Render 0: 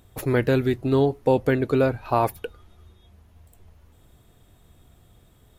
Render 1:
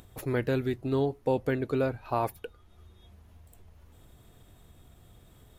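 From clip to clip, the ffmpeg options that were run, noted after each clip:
-af "acompressor=mode=upward:threshold=0.0126:ratio=2.5,volume=0.422"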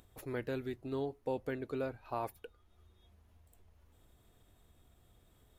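-af "equalizer=f=140:w=1.3:g=-4.5,volume=0.355"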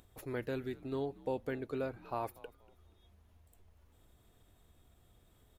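-filter_complex "[0:a]asplit=4[s0][s1][s2][s3];[s1]adelay=239,afreqshift=-86,volume=0.0891[s4];[s2]adelay=478,afreqshift=-172,volume=0.0302[s5];[s3]adelay=717,afreqshift=-258,volume=0.0104[s6];[s0][s4][s5][s6]amix=inputs=4:normalize=0"

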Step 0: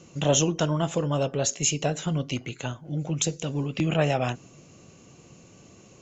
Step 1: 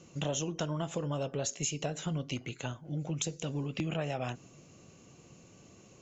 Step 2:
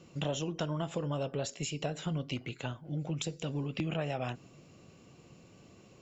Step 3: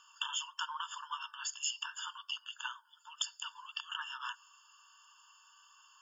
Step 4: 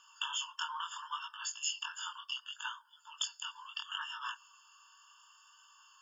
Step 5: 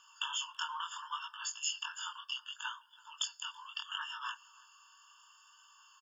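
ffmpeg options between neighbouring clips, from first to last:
-af "acompressor=threshold=0.0562:ratio=6,volume=0.562"
-af "equalizer=f=6400:w=6.8:g=-14"
-af "afftfilt=real='re*eq(mod(floor(b*sr/1024/900),2),1)':imag='im*eq(mod(floor(b*sr/1024/900),2),1)':win_size=1024:overlap=0.75,volume=1.88"
-af "flanger=delay=18:depth=7:speed=0.7,volume=1.5"
-filter_complex "[0:a]asplit=2[s0][s1];[s1]adelay=330,highpass=300,lowpass=3400,asoftclip=type=hard:threshold=0.0316,volume=0.0708[s2];[s0][s2]amix=inputs=2:normalize=0"

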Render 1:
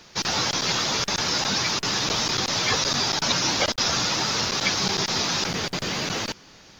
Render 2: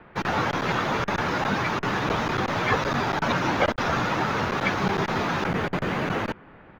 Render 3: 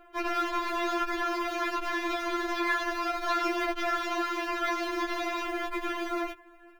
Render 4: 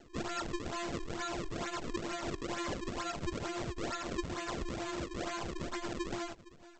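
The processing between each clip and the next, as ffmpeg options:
-filter_complex "[0:a]firequalizer=gain_entry='entry(1500,0);entry(5100,-23);entry(10000,-13)':delay=0.05:min_phase=1,acrossover=split=570|3000[s0][s1][s2];[s2]aeval=exprs='sgn(val(0))*max(abs(val(0))-0.00126,0)':c=same[s3];[s0][s1][s3]amix=inputs=3:normalize=0,volume=1.58"
-af "acrusher=bits=7:mode=log:mix=0:aa=0.000001,afftfilt=real='re*4*eq(mod(b,16),0)':imag='im*4*eq(mod(b,16),0)':win_size=2048:overlap=0.75,volume=0.794"
-af "acompressor=threshold=0.0224:ratio=6,aresample=16000,acrusher=samples=13:mix=1:aa=0.000001:lfo=1:lforange=20.8:lforate=2.2,aresample=44100,volume=0.794"

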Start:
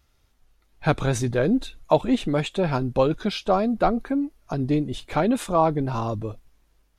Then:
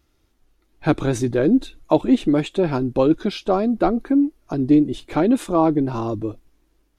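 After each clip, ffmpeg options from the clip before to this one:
-af "equalizer=f=320:w=2.2:g=12,volume=0.891"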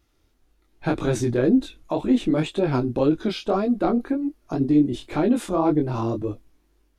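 -af "alimiter=limit=0.282:level=0:latency=1:release=42,flanger=delay=19.5:depth=6.4:speed=1.9,volume=1.26"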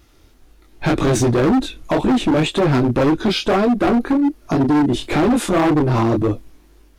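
-filter_complex "[0:a]asplit=2[s0][s1];[s1]acompressor=threshold=0.0355:ratio=6,volume=1.33[s2];[s0][s2]amix=inputs=2:normalize=0,volume=9.44,asoftclip=hard,volume=0.106,volume=2.24"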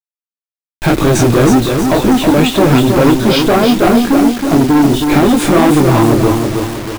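-af "aecho=1:1:320|640|960|1280|1600|1920:0.562|0.259|0.119|0.0547|0.0252|0.0116,acrusher=bits=4:mix=0:aa=0.000001,volume=1.88"

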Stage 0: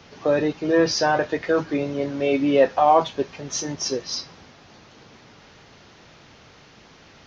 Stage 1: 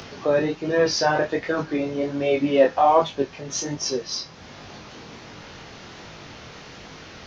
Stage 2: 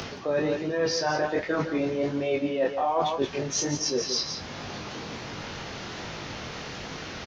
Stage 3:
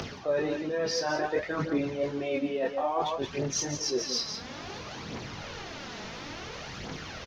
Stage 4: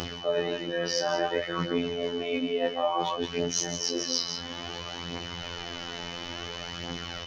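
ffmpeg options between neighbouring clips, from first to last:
-af "acompressor=mode=upward:threshold=0.0251:ratio=2.5,flanger=delay=19.5:depth=6.3:speed=1.3,volume=1.41"
-af "aecho=1:1:155|171:0.141|0.282,areverse,acompressor=threshold=0.0398:ratio=5,areverse,volume=1.58"
-af "aphaser=in_gain=1:out_gain=1:delay=4.8:decay=0.46:speed=0.58:type=triangular,volume=0.631"
-af "afftfilt=real='hypot(re,im)*cos(PI*b)':imag='0':win_size=2048:overlap=0.75,aeval=exprs='val(0)+0.00562*sin(2*PI*3000*n/s)':c=same,volume=1.78"

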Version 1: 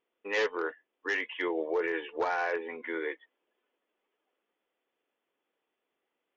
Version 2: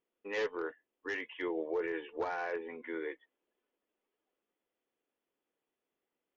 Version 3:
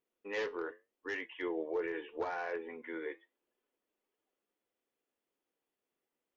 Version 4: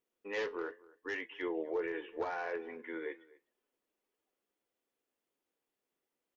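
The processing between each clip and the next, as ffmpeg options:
-af "lowshelf=f=320:g=10.5,volume=0.398"
-af "flanger=delay=7:depth=4.6:regen=-76:speed=0.82:shape=triangular,volume=1.41"
-filter_complex "[0:a]asplit=2[s0][s1];[s1]adelay=250.7,volume=0.0794,highshelf=f=4000:g=-5.64[s2];[s0][s2]amix=inputs=2:normalize=0"

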